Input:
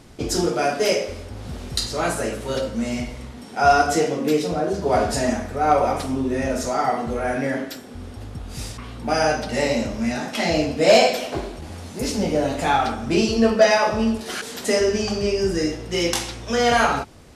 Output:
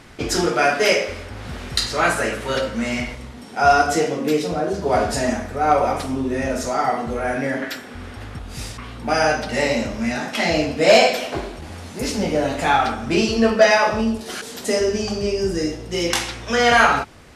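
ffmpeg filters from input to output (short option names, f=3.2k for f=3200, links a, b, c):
-af "asetnsamples=n=441:p=0,asendcmd='3.15 equalizer g 2.5;7.62 equalizer g 11.5;8.39 equalizer g 4.5;14.01 equalizer g -2;16.1 equalizer g 7',equalizer=f=1.8k:t=o:w=1.9:g=10"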